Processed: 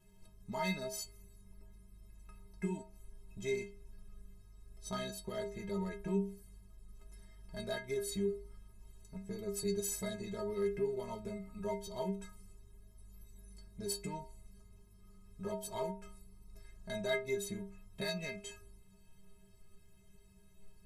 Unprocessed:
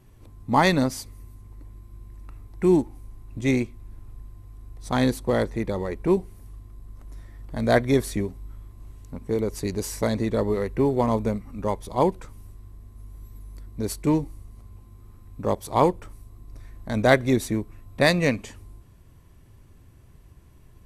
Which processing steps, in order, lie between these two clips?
ten-band graphic EQ 250 Hz -7 dB, 500 Hz -3 dB, 1 kHz -6 dB, 2 kHz -3 dB; compression 5:1, threshold -30 dBFS, peak gain reduction 12.5 dB; inharmonic resonator 190 Hz, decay 0.47 s, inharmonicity 0.03; trim +11 dB

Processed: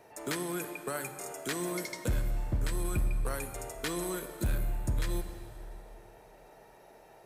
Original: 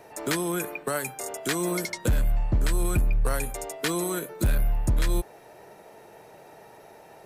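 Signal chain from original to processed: plate-style reverb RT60 2.8 s, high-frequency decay 0.8×, DRR 8 dB; trim -7.5 dB

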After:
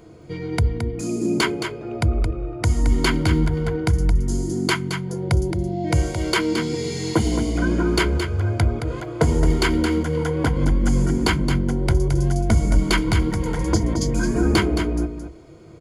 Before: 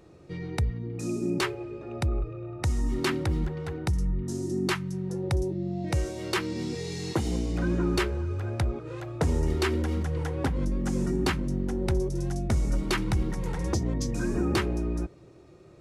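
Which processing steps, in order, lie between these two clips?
rippled EQ curve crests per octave 1.8, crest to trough 10 dB; delay 220 ms -8 dB; trim +6.5 dB

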